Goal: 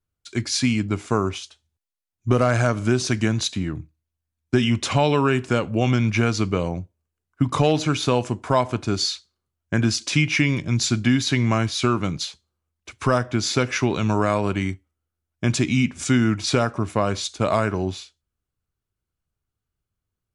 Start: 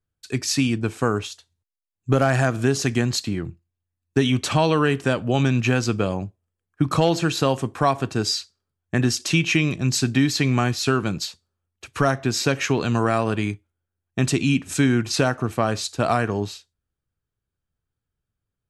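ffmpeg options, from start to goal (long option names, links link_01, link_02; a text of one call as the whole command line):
ffmpeg -i in.wav -af "asetrate=40517,aresample=44100" out.wav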